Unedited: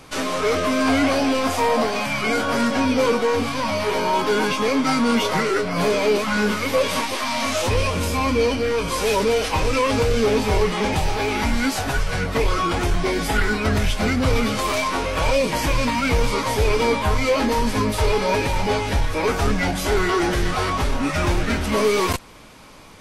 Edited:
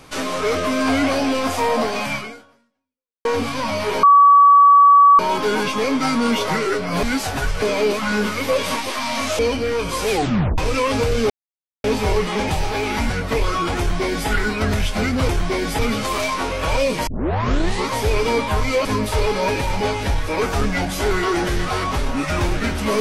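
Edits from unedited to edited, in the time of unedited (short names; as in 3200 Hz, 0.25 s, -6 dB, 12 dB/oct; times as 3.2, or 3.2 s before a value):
2.15–3.25 fade out exponential
4.03 add tone 1140 Hz -6.5 dBFS 1.16 s
7.64–8.38 cut
9.09 tape stop 0.48 s
10.29 insert silence 0.54 s
11.55–12.14 move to 5.87
12.83–13.33 copy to 14.33
15.61 tape start 0.80 s
17.39–17.71 cut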